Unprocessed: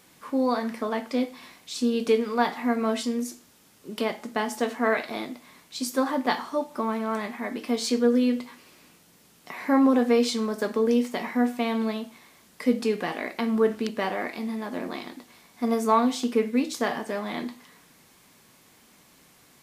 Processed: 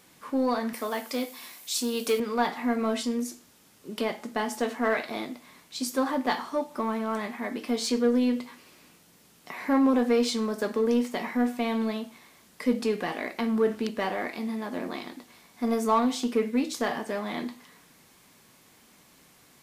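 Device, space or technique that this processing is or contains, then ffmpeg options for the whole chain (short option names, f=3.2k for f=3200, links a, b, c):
parallel distortion: -filter_complex "[0:a]asplit=2[a][b];[b]asoftclip=type=hard:threshold=-23.5dB,volume=-7dB[c];[a][c]amix=inputs=2:normalize=0,asettb=1/sr,asplit=3[d][e][f];[d]atrim=end=0.734[g];[e]atrim=start=0.73:end=2.2,asetpts=PTS-STARTPTS,afade=t=in:d=0.004:c=qsin,afade=t=out:st=1.466:d=0.004:c=qsin,aemphasis=mode=production:type=bsi[h];[f]atrim=start=2.196[i];[g][h]acrossfade=d=0.004:c1=hsin:c2=qsin[j];[j][i]acrossfade=d=0.004:c1=qsin:c2=hsin,volume=-4dB"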